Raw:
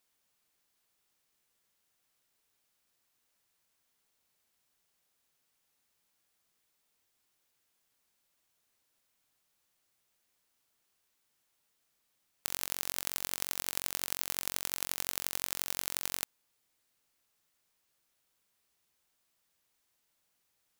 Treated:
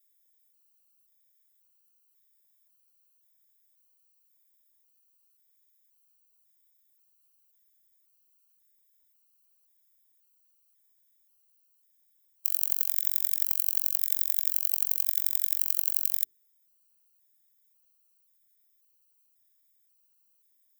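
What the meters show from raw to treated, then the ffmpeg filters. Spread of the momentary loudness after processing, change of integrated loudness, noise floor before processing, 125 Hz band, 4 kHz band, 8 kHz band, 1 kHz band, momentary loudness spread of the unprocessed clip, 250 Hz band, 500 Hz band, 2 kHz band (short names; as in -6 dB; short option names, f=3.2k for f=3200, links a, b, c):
2 LU, +9.5 dB, -78 dBFS, under -20 dB, -5.5 dB, +1.0 dB, under -10 dB, 2 LU, under -15 dB, under -15 dB, n/a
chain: -af "aemphasis=mode=production:type=riaa,bandreject=f=50:t=h:w=6,bandreject=f=100:t=h:w=6,bandreject=f=150:t=h:w=6,bandreject=f=200:t=h:w=6,bandreject=f=250:t=h:w=6,bandreject=f=300:t=h:w=6,bandreject=f=350:t=h:w=6,bandreject=f=400:t=h:w=6,afftfilt=real='re*gt(sin(2*PI*0.93*pts/sr)*(1-2*mod(floor(b*sr/1024/790),2)),0)':imag='im*gt(sin(2*PI*0.93*pts/sr)*(1-2*mod(floor(b*sr/1024/790),2)),0)':win_size=1024:overlap=0.75,volume=-9.5dB"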